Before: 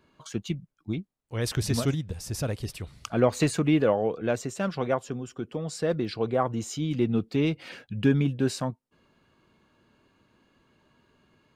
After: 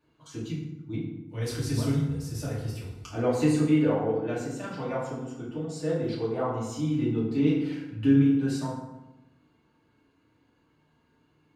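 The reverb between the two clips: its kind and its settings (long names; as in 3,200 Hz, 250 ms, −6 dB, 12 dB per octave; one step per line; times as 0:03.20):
feedback delay network reverb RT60 1 s, low-frequency decay 1.35×, high-frequency decay 0.6×, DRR −8 dB
level −12.5 dB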